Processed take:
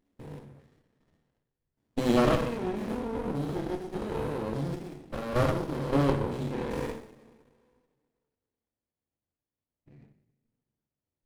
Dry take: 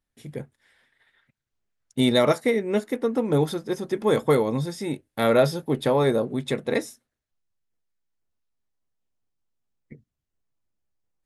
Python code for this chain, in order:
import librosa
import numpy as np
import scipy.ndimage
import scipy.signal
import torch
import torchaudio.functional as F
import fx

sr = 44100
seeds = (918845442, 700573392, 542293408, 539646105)

y = fx.spec_steps(x, sr, hold_ms=200)
y = fx.level_steps(y, sr, step_db=11)
y = fx.rev_double_slope(y, sr, seeds[0], early_s=0.52, late_s=2.1, knee_db=-18, drr_db=1.0)
y = fx.running_max(y, sr, window=33)